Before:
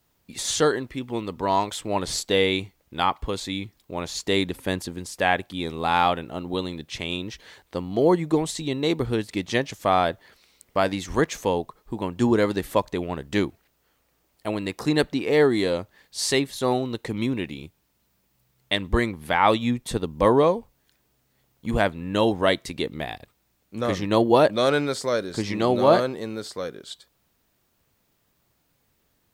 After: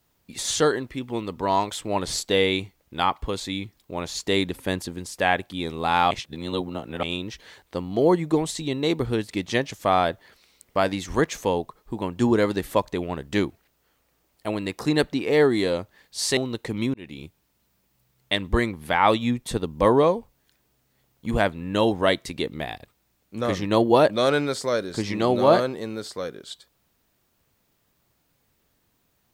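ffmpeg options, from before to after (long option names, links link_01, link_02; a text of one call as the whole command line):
ffmpeg -i in.wav -filter_complex "[0:a]asplit=5[link_01][link_02][link_03][link_04][link_05];[link_01]atrim=end=6.112[link_06];[link_02]atrim=start=6.108:end=7.032,asetpts=PTS-STARTPTS,areverse[link_07];[link_03]atrim=start=7.028:end=16.372[link_08];[link_04]atrim=start=16.768:end=17.34,asetpts=PTS-STARTPTS,afade=type=out:start_time=0.568:duration=0.004:curve=hsin[link_09];[link_05]atrim=start=17.34,asetpts=PTS-STARTPTS,afade=type=in:duration=0.28[link_10];[link_06][link_07]acrossfade=duration=0.004:curve1=hsin:curve2=hsin[link_11];[link_11][link_08]acrossfade=duration=0.004:curve1=hsin:curve2=hsin[link_12];[link_09][link_10]concat=n=2:v=0:a=1[link_13];[link_12][link_13]acrossfade=duration=0.004:curve1=hsin:curve2=hsin" out.wav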